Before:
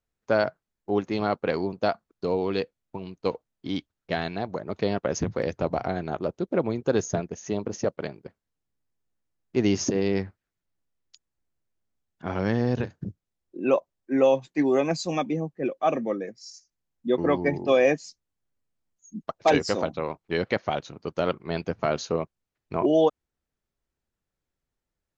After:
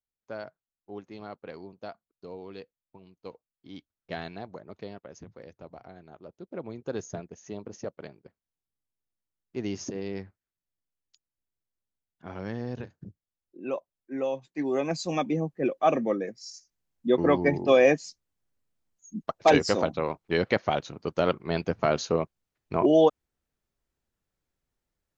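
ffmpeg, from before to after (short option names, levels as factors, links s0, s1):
-af "volume=4.47,afade=t=in:st=3.69:d=0.49:silence=0.375837,afade=t=out:st=4.18:d=0.9:silence=0.251189,afade=t=in:st=6.2:d=0.69:silence=0.334965,afade=t=in:st=14.46:d=1.03:silence=0.281838"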